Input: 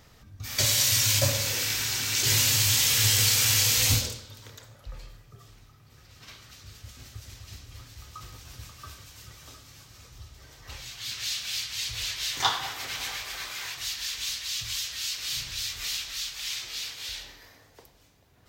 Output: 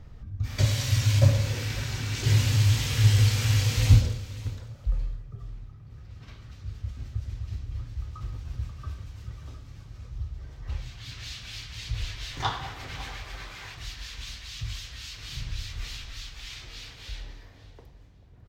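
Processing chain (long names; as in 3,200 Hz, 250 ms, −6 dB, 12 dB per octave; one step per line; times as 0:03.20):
RIAA equalisation playback
on a send: repeating echo 548 ms, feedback 17%, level −17.5 dB
on the sum: level −2.5 dB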